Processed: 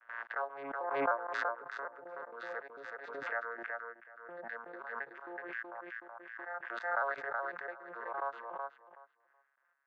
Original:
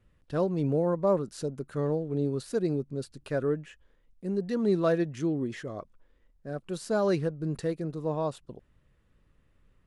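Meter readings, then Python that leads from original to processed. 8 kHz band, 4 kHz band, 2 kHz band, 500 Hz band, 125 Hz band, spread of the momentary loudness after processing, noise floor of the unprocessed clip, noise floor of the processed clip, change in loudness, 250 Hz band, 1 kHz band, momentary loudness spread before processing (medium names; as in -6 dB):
under -20 dB, -10.5 dB, +7.0 dB, -13.0 dB, under -35 dB, 13 LU, -67 dBFS, -76 dBFS, -9.5 dB, -23.0 dB, +2.0 dB, 13 LU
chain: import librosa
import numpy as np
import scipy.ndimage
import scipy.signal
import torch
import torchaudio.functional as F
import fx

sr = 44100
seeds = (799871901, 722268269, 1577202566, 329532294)

y = fx.vocoder_arp(x, sr, chord='minor triad', root=46, every_ms=369)
y = scipy.signal.sosfilt(scipy.signal.butter(4, 820.0, 'highpass', fs=sr, output='sos'), y)
y = fx.step_gate(y, sr, bpm=168, pattern='.xx.xxxx.x.', floor_db=-24.0, edge_ms=4.5)
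y = fx.lowpass_res(y, sr, hz=1600.0, q=4.3)
y = fx.echo_feedback(y, sr, ms=374, feedback_pct=16, wet_db=-4.0)
y = fx.pre_swell(y, sr, db_per_s=39.0)
y = F.gain(torch.from_numpy(y), 4.5).numpy()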